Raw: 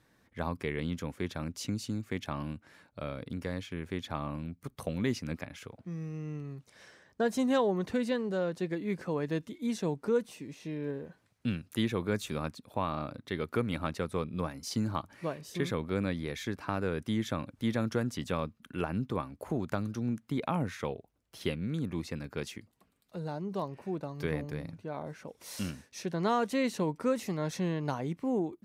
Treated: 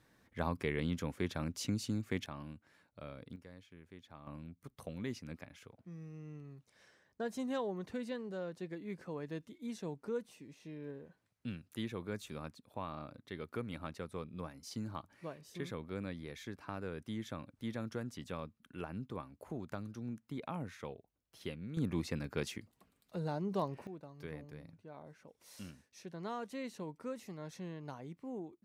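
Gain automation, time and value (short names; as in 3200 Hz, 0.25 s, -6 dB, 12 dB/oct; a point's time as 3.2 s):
-1.5 dB
from 2.26 s -10 dB
from 3.36 s -18.5 dB
from 4.27 s -10 dB
from 21.77 s -0.5 dB
from 23.87 s -13 dB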